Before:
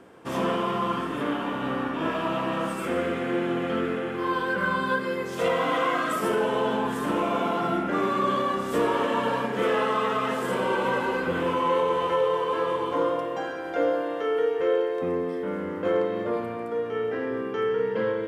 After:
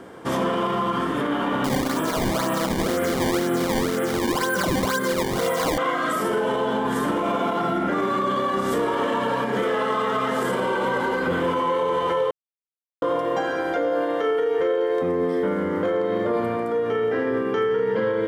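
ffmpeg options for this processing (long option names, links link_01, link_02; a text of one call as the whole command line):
ffmpeg -i in.wav -filter_complex "[0:a]asettb=1/sr,asplit=3[link_01][link_02][link_03];[link_01]atrim=end=1.644[link_04];[link_02]atrim=start=1.64:end=5.78,asetpts=PTS-STARTPTS,afade=type=in:duration=0.004:curve=qsin,afade=type=out:start_time=4.136:duration=0.004:curve=qsin,acrusher=samples=19:mix=1:aa=0.000001:lfo=1:lforange=30.4:lforate=2[link_05];[link_03]atrim=start=5.776[link_06];[link_04][link_05]acrossfade=duration=0.004:curve1=hsin:curve2=qsin[link_07];[link_07][link_06]acrossfade=duration=0.004:curve1=qsin:curve2=hsin,asplit=3[link_08][link_09][link_10];[link_08]atrim=end=12.31,asetpts=PTS-STARTPTS,afade=type=out:start_time=12.306:duration=0.004:curve=hsin[link_11];[link_09]atrim=start=12.31:end=13.02,asetpts=PTS-STARTPTS,volume=0[link_12];[link_10]atrim=start=13.02,asetpts=PTS-STARTPTS,afade=type=in:duration=0.004:curve=hsin[link_13];[link_11][link_12][link_13]concat=n=3:v=0:a=1,bandreject=frequency=2600:width=8,alimiter=limit=-24dB:level=0:latency=1:release=97,volume=9dB" out.wav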